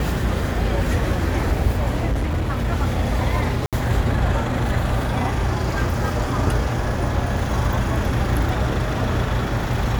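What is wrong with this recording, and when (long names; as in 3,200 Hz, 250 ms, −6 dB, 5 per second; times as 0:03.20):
0:02.11–0:02.66: clipping −17.5 dBFS
0:03.66–0:03.73: drop-out 67 ms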